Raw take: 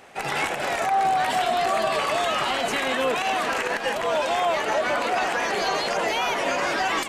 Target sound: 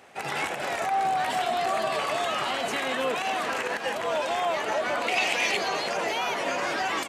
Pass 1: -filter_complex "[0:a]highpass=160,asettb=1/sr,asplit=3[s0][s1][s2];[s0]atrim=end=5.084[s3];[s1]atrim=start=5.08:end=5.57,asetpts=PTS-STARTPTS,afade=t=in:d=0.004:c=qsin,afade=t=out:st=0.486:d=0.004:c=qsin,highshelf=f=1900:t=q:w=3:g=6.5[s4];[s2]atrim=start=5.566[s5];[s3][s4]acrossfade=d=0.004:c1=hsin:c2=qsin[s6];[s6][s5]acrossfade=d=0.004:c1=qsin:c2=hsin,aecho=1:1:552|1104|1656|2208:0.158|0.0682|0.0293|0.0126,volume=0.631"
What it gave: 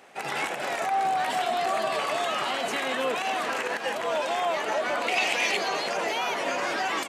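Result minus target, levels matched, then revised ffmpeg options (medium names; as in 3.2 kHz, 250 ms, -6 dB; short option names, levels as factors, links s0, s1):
125 Hz band -3.5 dB
-filter_complex "[0:a]highpass=69,asettb=1/sr,asplit=3[s0][s1][s2];[s0]atrim=end=5.084[s3];[s1]atrim=start=5.08:end=5.57,asetpts=PTS-STARTPTS,afade=t=in:d=0.004:c=qsin,afade=t=out:st=0.486:d=0.004:c=qsin,highshelf=f=1900:t=q:w=3:g=6.5[s4];[s2]atrim=start=5.566[s5];[s3][s4]acrossfade=d=0.004:c1=hsin:c2=qsin[s6];[s6][s5]acrossfade=d=0.004:c1=qsin:c2=hsin,aecho=1:1:552|1104|1656|2208:0.158|0.0682|0.0293|0.0126,volume=0.631"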